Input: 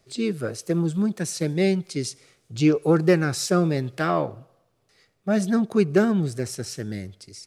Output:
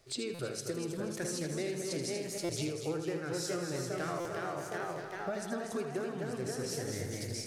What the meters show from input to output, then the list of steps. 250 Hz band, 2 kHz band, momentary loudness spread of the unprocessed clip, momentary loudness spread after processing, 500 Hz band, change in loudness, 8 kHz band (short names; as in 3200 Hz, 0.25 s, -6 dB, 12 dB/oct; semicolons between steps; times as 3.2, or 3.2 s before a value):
-16.0 dB, -9.5 dB, 12 LU, 3 LU, -11.5 dB, -13.5 dB, -5.5 dB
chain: echoes that change speed 0.587 s, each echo +1 st, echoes 3, each echo -6 dB; bell 200 Hz -13 dB 0.52 oct; compressor 12:1, threshold -34 dBFS, peak gain reduction 21.5 dB; de-hum 110.7 Hz, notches 28; on a send: multi-head echo 80 ms, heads first and third, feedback 45%, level -8 dB; on the sum: stuck buffer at 0.34/2.44/4.2, samples 256, times 8